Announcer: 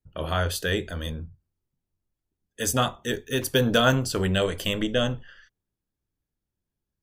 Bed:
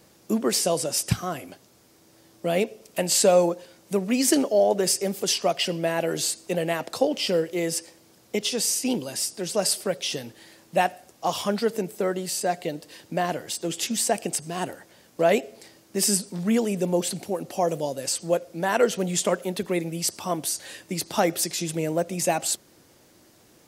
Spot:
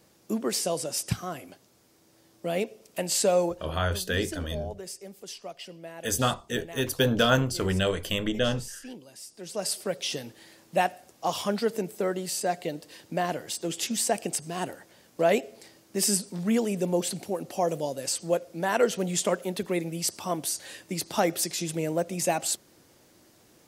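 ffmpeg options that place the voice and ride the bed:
ffmpeg -i stem1.wav -i stem2.wav -filter_complex "[0:a]adelay=3450,volume=-2dB[link_01];[1:a]volume=9.5dB,afade=type=out:start_time=3.49:duration=0.35:silence=0.251189,afade=type=in:start_time=9.24:duration=0.79:silence=0.188365[link_02];[link_01][link_02]amix=inputs=2:normalize=0" out.wav

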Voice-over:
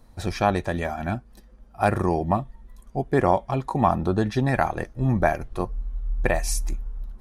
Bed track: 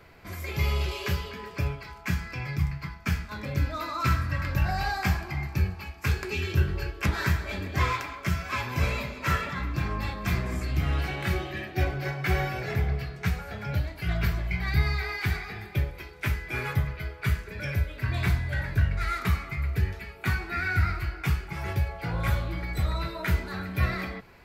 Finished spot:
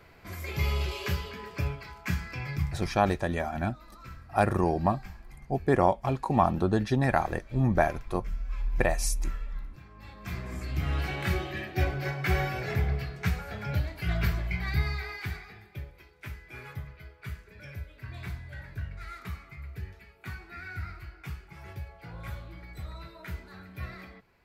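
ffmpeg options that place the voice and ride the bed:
ffmpeg -i stem1.wav -i stem2.wav -filter_complex "[0:a]adelay=2550,volume=-3dB[link_01];[1:a]volume=18.5dB,afade=type=out:start_time=2.54:duration=0.65:silence=0.105925,afade=type=in:start_time=9.94:duration=1.22:silence=0.0944061,afade=type=out:start_time=14.31:duration=1.34:silence=0.251189[link_02];[link_01][link_02]amix=inputs=2:normalize=0" out.wav

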